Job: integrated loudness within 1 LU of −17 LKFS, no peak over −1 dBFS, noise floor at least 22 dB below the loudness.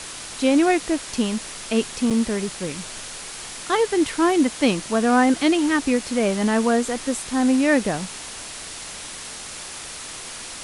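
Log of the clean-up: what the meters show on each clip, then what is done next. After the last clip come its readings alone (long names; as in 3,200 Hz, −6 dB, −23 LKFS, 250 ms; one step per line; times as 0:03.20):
number of dropouts 1; longest dropout 6.6 ms; background noise floor −36 dBFS; target noise floor −43 dBFS; integrated loudness −21.0 LKFS; sample peak −5.5 dBFS; target loudness −17.0 LKFS
→ repair the gap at 0:02.10, 6.6 ms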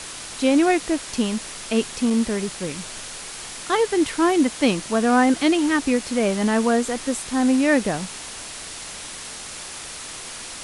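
number of dropouts 0; background noise floor −36 dBFS; target noise floor −43 dBFS
→ broadband denoise 7 dB, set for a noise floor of −36 dBFS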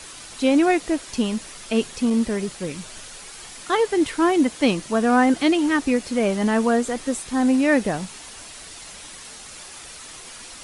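background noise floor −40 dBFS; target noise floor −43 dBFS
→ broadband denoise 6 dB, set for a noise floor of −40 dBFS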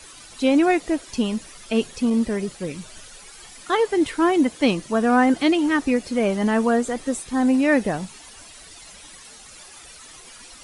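background noise floor −44 dBFS; integrated loudness −21.5 LKFS; sample peak −6.0 dBFS; target loudness −17.0 LKFS
→ level +4.5 dB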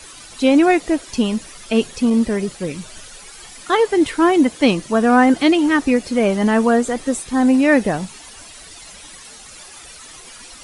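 integrated loudness −17.0 LKFS; sample peak −1.5 dBFS; background noise floor −40 dBFS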